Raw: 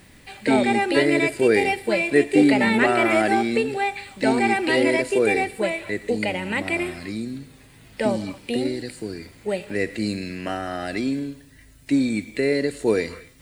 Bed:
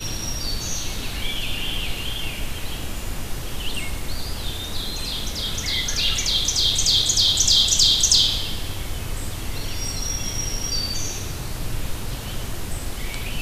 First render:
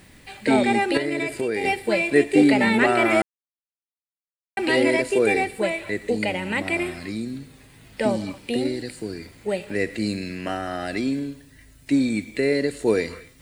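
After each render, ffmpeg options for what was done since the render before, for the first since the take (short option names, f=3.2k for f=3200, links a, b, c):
-filter_complex "[0:a]asettb=1/sr,asplit=3[a][b][c];[a]atrim=end=0.974[d];[b]atrim=start=0.97:end=1.64,asetpts=PTS-STARTPTS,afade=t=in:d=0.004:c=qsin,afade=t=out:st=0.666:d=0.004:c=qsin,acompressor=threshold=-21dB:ratio=6:attack=3.2:release=140:knee=1:detection=peak[e];[c]atrim=start=1.636[f];[d][e]acrossfade=d=0.004:c1=hsin:c2=qsin[g];[g][f]acrossfade=d=0.004:c1=qsin:c2=hsin,asplit=3[h][i][j];[h]atrim=end=3.22,asetpts=PTS-STARTPTS,afade=t=out:st=3.216:d=0.004:c=hsin[k];[i]atrim=start=3.22:end=4.57,asetpts=PTS-STARTPTS,volume=0[l];[j]atrim=start=4.57,asetpts=PTS-STARTPTS,afade=t=in:d=0.004:c=hsin[m];[k][l][m]concat=n=3:v=0:a=1"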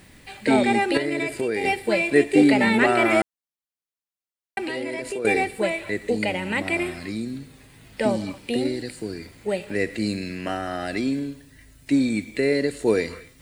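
-filter_complex "[0:a]asettb=1/sr,asplit=3[a][b][c];[a]atrim=end=4.584[d];[b]atrim=start=4.58:end=5.25,asetpts=PTS-STARTPTS,afade=t=in:d=0.004:c=qsin,afade=t=out:st=0.666:d=0.004:c=qsin,acompressor=threshold=-26dB:ratio=6:attack=3.2:release=140:knee=1:detection=peak[e];[c]atrim=start=5.246[f];[d][e]acrossfade=d=0.004:c1=hsin:c2=qsin[g];[g][f]acrossfade=d=0.004:c1=qsin:c2=hsin"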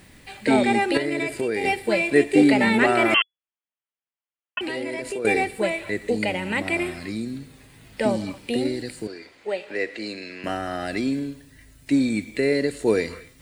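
-filter_complex "[0:a]asettb=1/sr,asplit=3[a][b][c];[a]atrim=end=3.144[d];[b]atrim=start=3.14:end=4.61,asetpts=PTS-STARTPTS,afade=t=in:d=0.004:c=qsin,afade=t=out:st=1.466:d=0.004:c=qsin,lowpass=f=2.9k:t=q:w=0.5098,lowpass=f=2.9k:t=q:w=0.6013,lowpass=f=2.9k:t=q:w=0.9,lowpass=f=2.9k:t=q:w=2.563,afreqshift=-3400[e];[c]atrim=start=4.606[f];[d][e]acrossfade=d=0.004:c1=hsin:c2=qsin[g];[g][f]acrossfade=d=0.004:c1=qsin:c2=hsin,asettb=1/sr,asplit=3[h][i][j];[h]atrim=end=9.074[k];[i]atrim=start=9.07:end=10.44,asetpts=PTS-STARTPTS,afade=t=in:d=0.004:c=qsin,afade=t=out:st=1.366:d=0.004:c=qsin,acrossover=split=330 6100:gain=0.1 1 0.158[l][m][n];[l][m][n]amix=inputs=3:normalize=0[o];[j]atrim=start=10.436[p];[k][o]acrossfade=d=0.004:c1=hsin:c2=qsin[q];[q][p]acrossfade=d=0.004:c1=qsin:c2=hsin"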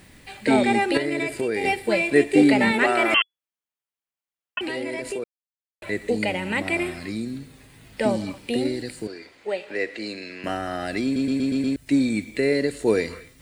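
-filter_complex "[0:a]asettb=1/sr,asplit=3[a][b][c];[a]atrim=end=2.714[d];[b]atrim=start=2.71:end=3.14,asetpts=PTS-STARTPTS,afade=t=in:d=0.004:c=qsin,afade=t=out:st=0.426:d=0.004:c=qsin,equalizer=f=85:w=0.55:g=-14[e];[c]atrim=start=3.136[f];[d][e]acrossfade=d=0.004:c1=hsin:c2=qsin[g];[g][f]acrossfade=d=0.004:c1=qsin:c2=hsin,asplit=9[h][i][j][k][l][m][n][o][p];[h]atrim=end=5.24,asetpts=PTS-STARTPTS,afade=t=out:st=5.236:d=0.004:c=hsin[q];[i]atrim=start=5.24:end=5.82,asetpts=PTS-STARTPTS,volume=0[r];[j]atrim=start=5.82:end=11.162,asetpts=PTS-STARTPTS,afade=t=in:d=0.004:c=hsin[s];[k]atrim=start=11.038:end=11.162[t];[l]atrim=start=11.038:end=11.162[u];[m]atrim=start=11.038:end=11.162[v];[n]atrim=start=11.038:end=11.162[w];[o]atrim=start=11.038:end=11.162[x];[p]atrim=start=11.758[y];[q][r][s]concat=n=3:v=0:a=1[z];[z][t]acrossfade=d=0.004:c1=hsin:c2=hsin[aa];[aa][u]acrossfade=d=0.004:c1=hsin:c2=hsin[ab];[ab][v]acrossfade=d=0.004:c1=hsin:c2=hsin[ac];[ac][w]acrossfade=d=0.004:c1=hsin:c2=hsin[ad];[ad][x]acrossfade=d=0.004:c1=hsin:c2=hsin[ae];[ae][y]acrossfade=d=0.004:c1=hsin:c2=hsin"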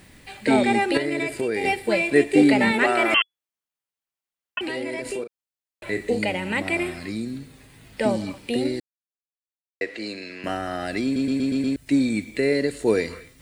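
-filter_complex "[0:a]asettb=1/sr,asplit=3[a][b][c];[a]atrim=end=5.024[d];[b]atrim=start=5.02:end=6.21,asetpts=PTS-STARTPTS,afade=t=in:d=0.004:c=qsin,afade=t=out:st=1.186:d=0.004:c=qsin,asplit=2[e][f];[f]adelay=36,volume=-7.5dB[g];[e][g]amix=inputs=2:normalize=0,atrim=end_sample=52479[h];[c]atrim=start=6.206[i];[d][h]acrossfade=d=0.004:c1=hsin:c2=qsin[j];[j][i]acrossfade=d=0.004:c1=qsin:c2=hsin,asplit=3[k][l][m];[k]atrim=end=8.8,asetpts=PTS-STARTPTS,afade=t=out:st=8.796:d=0.004:c=hsin[n];[l]atrim=start=8.8:end=9.81,asetpts=PTS-STARTPTS,volume=0[o];[m]atrim=start=9.81,asetpts=PTS-STARTPTS,afade=t=in:d=0.004:c=hsin[p];[n][o][p]concat=n=3:v=0:a=1"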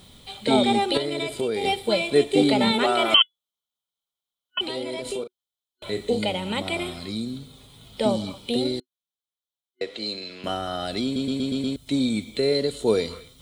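-af "superequalizer=6b=0.562:11b=0.282:12b=0.562:13b=2.82"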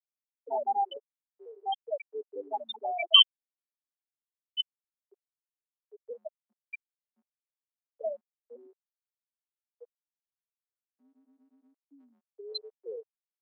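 -af "afftfilt=real='re*gte(hypot(re,im),0.501)':imag='im*gte(hypot(re,im),0.501)':win_size=1024:overlap=0.75,highpass=f=750:w=0.5412,highpass=f=750:w=1.3066"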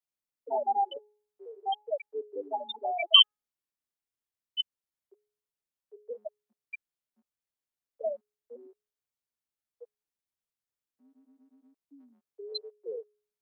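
-af "lowshelf=f=400:g=5,bandreject=f=420:t=h:w=4,bandreject=f=840:t=h:w=4,bandreject=f=1.26k:t=h:w=4,bandreject=f=1.68k:t=h:w=4"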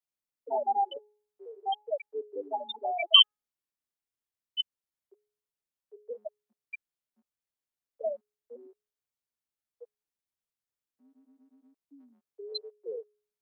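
-af anull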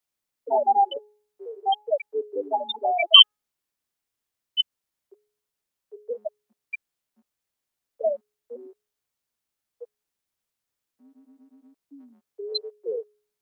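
-af "volume=8dB,alimiter=limit=-1dB:level=0:latency=1"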